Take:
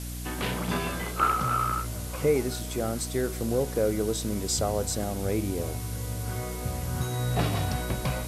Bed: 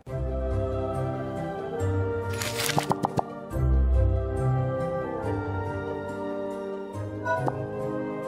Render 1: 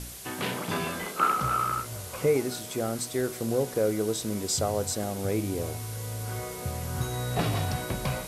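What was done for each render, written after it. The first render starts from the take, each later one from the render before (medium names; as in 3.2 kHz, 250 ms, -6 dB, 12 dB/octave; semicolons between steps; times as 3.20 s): de-hum 60 Hz, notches 5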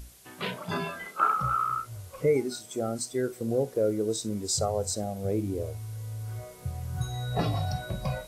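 noise print and reduce 12 dB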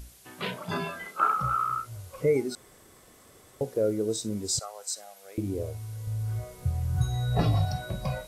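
2.55–3.61 s: room tone; 4.59–5.38 s: Chebyshev high-pass 1.4 kHz; 6.07–7.65 s: bass shelf 100 Hz +12 dB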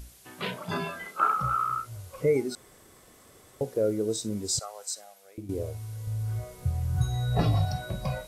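4.82–5.49 s: fade out, to -12 dB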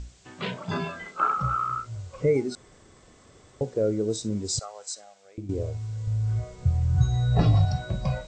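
steep low-pass 8.1 kHz 96 dB/octave; bass shelf 210 Hz +6.5 dB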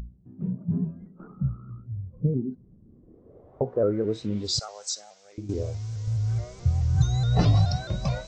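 low-pass sweep 200 Hz -> 5.9 kHz, 2.83–4.68 s; vibrato with a chosen wave saw up 4.7 Hz, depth 100 cents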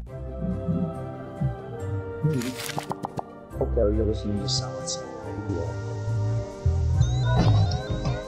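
add bed -5.5 dB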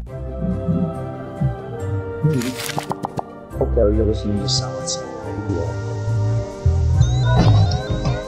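trim +6.5 dB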